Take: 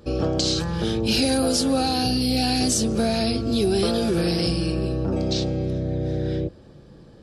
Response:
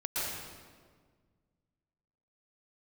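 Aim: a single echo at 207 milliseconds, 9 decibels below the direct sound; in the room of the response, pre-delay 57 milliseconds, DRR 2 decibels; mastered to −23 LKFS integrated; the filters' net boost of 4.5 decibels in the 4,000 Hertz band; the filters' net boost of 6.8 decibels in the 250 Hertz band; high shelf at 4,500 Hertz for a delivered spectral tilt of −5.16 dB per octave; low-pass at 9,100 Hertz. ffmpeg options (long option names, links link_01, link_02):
-filter_complex "[0:a]lowpass=9100,equalizer=frequency=250:width_type=o:gain=8,equalizer=frequency=4000:width_type=o:gain=3.5,highshelf=frequency=4500:gain=3.5,aecho=1:1:207:0.355,asplit=2[link_01][link_02];[1:a]atrim=start_sample=2205,adelay=57[link_03];[link_02][link_03]afir=irnorm=-1:irlink=0,volume=-8dB[link_04];[link_01][link_04]amix=inputs=2:normalize=0,volume=-7.5dB"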